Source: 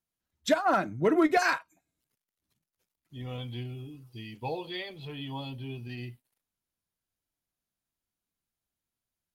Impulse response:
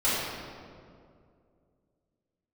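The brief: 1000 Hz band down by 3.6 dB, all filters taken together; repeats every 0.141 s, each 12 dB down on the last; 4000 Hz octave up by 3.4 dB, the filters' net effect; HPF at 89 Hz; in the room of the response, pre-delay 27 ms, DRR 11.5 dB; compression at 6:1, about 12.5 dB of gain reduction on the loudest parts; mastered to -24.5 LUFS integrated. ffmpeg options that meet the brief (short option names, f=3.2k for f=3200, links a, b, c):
-filter_complex "[0:a]highpass=89,equalizer=f=1k:t=o:g=-6,equalizer=f=4k:t=o:g=4.5,acompressor=threshold=-34dB:ratio=6,aecho=1:1:141|282|423:0.251|0.0628|0.0157,asplit=2[a][b];[1:a]atrim=start_sample=2205,adelay=27[c];[b][c]afir=irnorm=-1:irlink=0,volume=-25dB[d];[a][d]amix=inputs=2:normalize=0,volume=15dB"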